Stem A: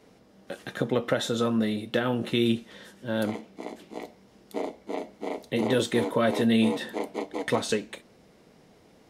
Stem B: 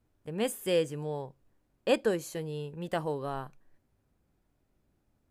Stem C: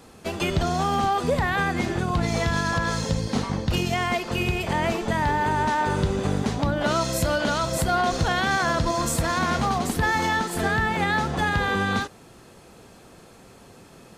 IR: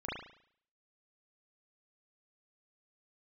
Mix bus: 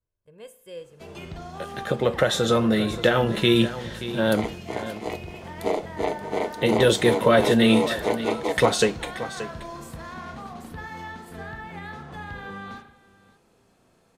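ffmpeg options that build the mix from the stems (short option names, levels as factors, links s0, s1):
-filter_complex "[0:a]equalizer=f=260:t=o:w=0.23:g=-14,dynaudnorm=f=710:g=3:m=2,adelay=1100,volume=1.19,asplit=2[s0][s1];[s1]volume=0.211[s2];[1:a]aecho=1:1:1.9:0.65,volume=0.15,asplit=2[s3][s4];[s4]volume=0.178[s5];[2:a]adynamicequalizer=threshold=0.00501:dfrequency=7000:dqfactor=0.77:tfrequency=7000:tqfactor=0.77:attack=5:release=100:ratio=0.375:range=3:mode=cutabove:tftype=bell,adelay=750,volume=0.141,asplit=3[s6][s7][s8];[s7]volume=0.473[s9];[s8]volume=0.15[s10];[3:a]atrim=start_sample=2205[s11];[s5][s9]amix=inputs=2:normalize=0[s12];[s12][s11]afir=irnorm=-1:irlink=0[s13];[s2][s10]amix=inputs=2:normalize=0,aecho=0:1:578:1[s14];[s0][s3][s6][s13][s14]amix=inputs=5:normalize=0"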